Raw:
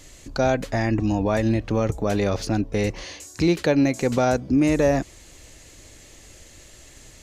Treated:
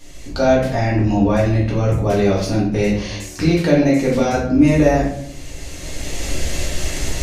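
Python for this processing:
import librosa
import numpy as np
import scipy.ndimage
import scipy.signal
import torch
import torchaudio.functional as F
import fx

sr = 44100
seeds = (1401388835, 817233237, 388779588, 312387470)

y = fx.recorder_agc(x, sr, target_db=-18.0, rise_db_per_s=14.0, max_gain_db=30)
y = fx.peak_eq(y, sr, hz=7400.0, db=-3.5, octaves=0.25)
y = fx.room_shoebox(y, sr, seeds[0], volume_m3=110.0, walls='mixed', distance_m=1.7)
y = F.gain(torch.from_numpy(y), -2.5).numpy()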